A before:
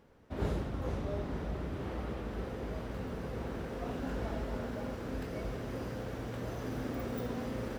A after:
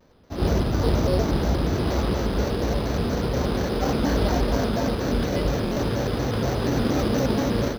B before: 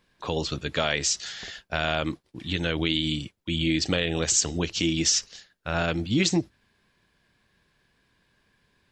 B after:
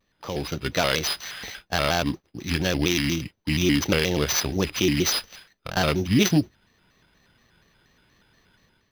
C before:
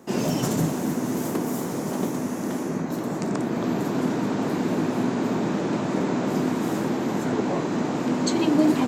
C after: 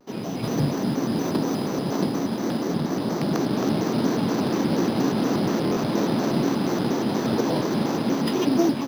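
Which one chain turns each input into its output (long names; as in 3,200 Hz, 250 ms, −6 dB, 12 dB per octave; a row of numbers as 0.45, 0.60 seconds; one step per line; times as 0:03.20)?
samples sorted by size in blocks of 8 samples
high shelf with overshoot 5,200 Hz −8.5 dB, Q 1.5
automatic gain control gain up to 10 dB
buffer that repeats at 0:05.65, samples 1,024, times 4
pitch modulation by a square or saw wave square 4.2 Hz, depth 160 cents
loudness normalisation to −24 LKFS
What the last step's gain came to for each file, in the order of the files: +5.0, −3.0, −7.0 decibels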